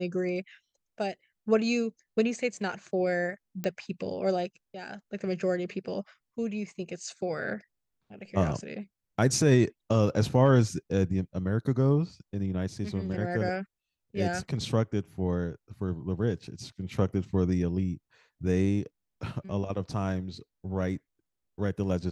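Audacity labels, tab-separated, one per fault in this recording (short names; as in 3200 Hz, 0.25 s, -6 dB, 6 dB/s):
3.640000	3.640000	pop -18 dBFS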